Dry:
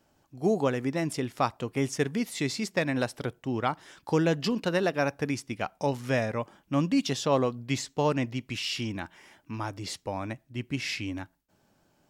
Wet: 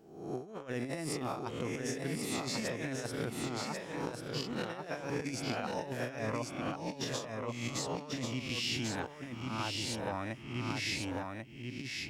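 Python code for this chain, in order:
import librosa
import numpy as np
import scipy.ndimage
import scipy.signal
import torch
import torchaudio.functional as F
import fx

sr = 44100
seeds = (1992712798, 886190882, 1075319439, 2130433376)

y = fx.spec_swells(x, sr, rise_s=0.76)
y = fx.over_compress(y, sr, threshold_db=-29.0, ratio=-0.5)
y = y + 10.0 ** (-4.0 / 20.0) * np.pad(y, (int(1091 * sr / 1000.0), 0))[:len(y)]
y = y * librosa.db_to_amplitude(-8.5)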